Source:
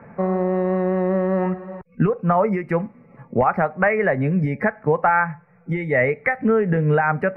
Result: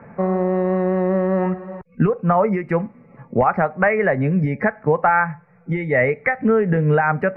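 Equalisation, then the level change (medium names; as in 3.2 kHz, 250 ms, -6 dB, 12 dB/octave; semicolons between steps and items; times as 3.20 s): distance through air 54 m; +1.5 dB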